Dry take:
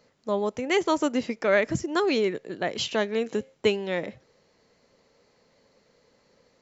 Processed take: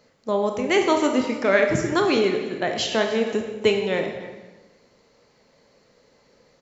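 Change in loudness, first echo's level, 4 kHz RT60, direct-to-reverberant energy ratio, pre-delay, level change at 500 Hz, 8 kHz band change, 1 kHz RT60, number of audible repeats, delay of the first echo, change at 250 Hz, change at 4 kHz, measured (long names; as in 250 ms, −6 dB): +4.5 dB, −17.5 dB, 1.0 s, 3.5 dB, 24 ms, +4.5 dB, can't be measured, 1.2 s, 1, 294 ms, +4.5 dB, +4.5 dB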